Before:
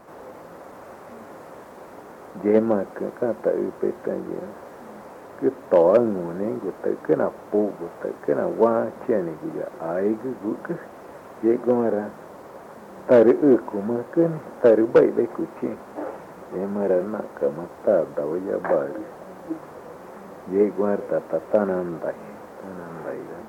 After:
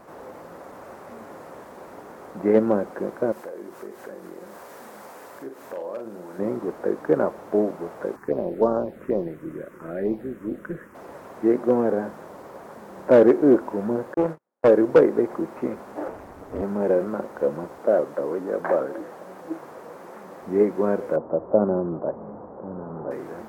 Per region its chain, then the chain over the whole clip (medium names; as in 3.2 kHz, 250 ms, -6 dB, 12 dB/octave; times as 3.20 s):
3.32–6.39 s: tilt EQ +2.5 dB/octave + compression 2.5:1, threshold -39 dBFS + doubling 44 ms -7 dB
8.16–10.95 s: AM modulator 190 Hz, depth 20% + touch-sensitive phaser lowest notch 550 Hz, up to 2.2 kHz, full sweep at -16 dBFS
14.14–14.68 s: bass shelf 230 Hz -10.5 dB + gate -32 dBFS, range -43 dB + loudspeaker Doppler distortion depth 0.31 ms
16.08–16.62 s: bass shelf 230 Hz +7 dB + hard clipper -18.5 dBFS + ring modulator 100 Hz
17.78–20.42 s: high-pass 220 Hz 6 dB/octave + vibrato with a chosen wave saw up 4.9 Hz, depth 100 cents
21.16–23.11 s: low-pass 1.1 kHz 24 dB/octave + peaking EQ 86 Hz +4.5 dB 2.7 oct
whole clip: none